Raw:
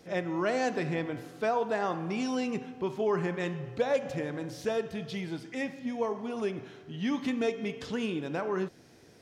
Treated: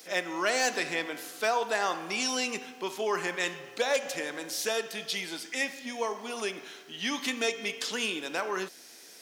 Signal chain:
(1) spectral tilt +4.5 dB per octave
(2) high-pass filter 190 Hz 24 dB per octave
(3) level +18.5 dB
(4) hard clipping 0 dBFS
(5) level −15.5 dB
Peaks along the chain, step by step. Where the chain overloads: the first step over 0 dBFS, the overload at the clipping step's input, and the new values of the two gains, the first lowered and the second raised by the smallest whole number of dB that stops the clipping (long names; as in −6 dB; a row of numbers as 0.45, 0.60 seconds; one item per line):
−15.5, −14.5, +4.0, 0.0, −15.5 dBFS
step 3, 4.0 dB
step 3 +14.5 dB, step 5 −11.5 dB